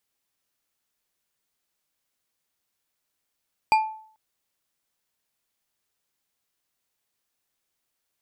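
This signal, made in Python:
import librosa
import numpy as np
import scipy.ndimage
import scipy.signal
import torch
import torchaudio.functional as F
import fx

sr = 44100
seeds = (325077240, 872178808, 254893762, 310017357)

y = fx.strike_glass(sr, length_s=0.44, level_db=-13.0, body='bar', hz=873.0, decay_s=0.54, tilt_db=7.5, modes=5)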